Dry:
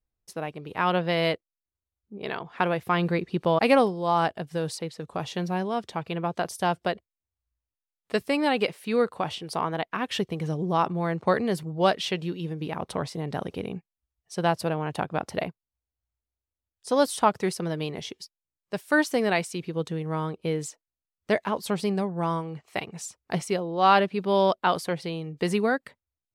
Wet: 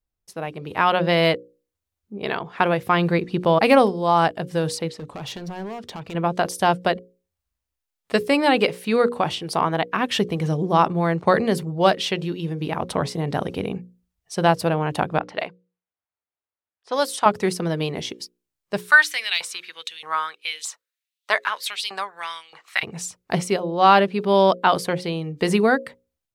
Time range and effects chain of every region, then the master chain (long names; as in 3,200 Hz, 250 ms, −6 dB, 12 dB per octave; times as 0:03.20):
0:04.89–0:06.15: high-shelf EQ 11,000 Hz −9.5 dB + downward compressor 5 to 1, threshold −33 dBFS + gain into a clipping stage and back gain 35.5 dB
0:15.19–0:17.26: low-pass that shuts in the quiet parts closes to 1,800 Hz, open at −20 dBFS + high-pass filter 930 Hz 6 dB per octave
0:18.78–0:22.83: parametric band 3,800 Hz +5.5 dB 0.25 octaves + auto-filter high-pass saw up 1.6 Hz 970–3,500 Hz
whole clip: de-essing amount 60%; mains-hum notches 60/120/180/240/300/360/420/480/540 Hz; automatic gain control gain up to 7 dB